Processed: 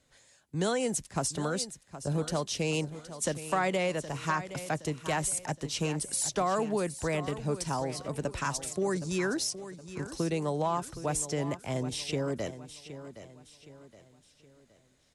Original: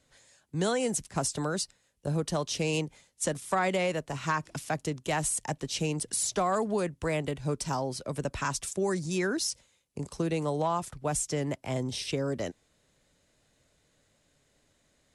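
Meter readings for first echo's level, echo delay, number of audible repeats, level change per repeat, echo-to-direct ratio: −13.0 dB, 768 ms, 3, −8.0 dB, −12.0 dB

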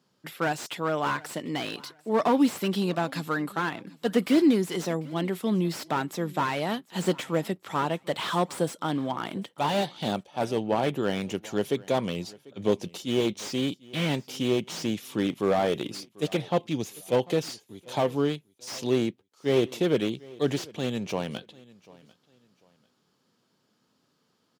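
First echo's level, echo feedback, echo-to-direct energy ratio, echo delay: −22.5 dB, 28%, −22.0 dB, 744 ms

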